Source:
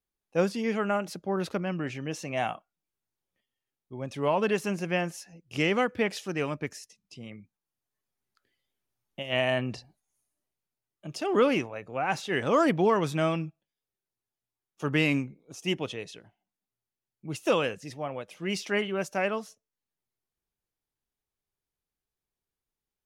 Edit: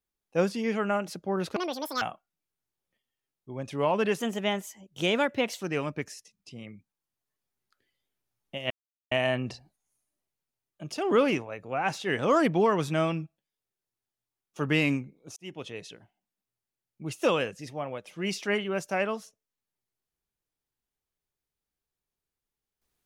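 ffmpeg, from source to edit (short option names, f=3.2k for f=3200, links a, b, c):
-filter_complex "[0:a]asplit=7[a][b][c][d][e][f][g];[a]atrim=end=1.564[h];[b]atrim=start=1.56:end=2.45,asetpts=PTS-STARTPTS,asetrate=85995,aresample=44100[i];[c]atrim=start=2.446:end=4.634[j];[d]atrim=start=4.63:end=6.26,asetpts=PTS-STARTPTS,asetrate=50715,aresample=44100[k];[e]atrim=start=6.256:end=9.35,asetpts=PTS-STARTPTS,afade=t=out:st=3.09:d=0.004:c=hsin,apad=pad_dur=0.41[l];[f]atrim=start=9.35:end=15.6,asetpts=PTS-STARTPTS,afade=t=in:d=0.004:c=hsin,afade=t=out:st=6.246:d=0.004:c=hsin[m];[g]atrim=start=15.6,asetpts=PTS-STARTPTS,afade=t=in:d=0.5[n];[h][i]acrossfade=d=0.004:c1=hsin:c2=hsin[o];[o][j]acrossfade=d=0.004:c1=hsin:c2=hsin[p];[p][k]acrossfade=d=0.004:c1=hsin:c2=hsin[q];[l][m][n]concat=n=3:v=0:a=1[r];[q][r]acrossfade=d=0.004:c1=hsin:c2=hsin"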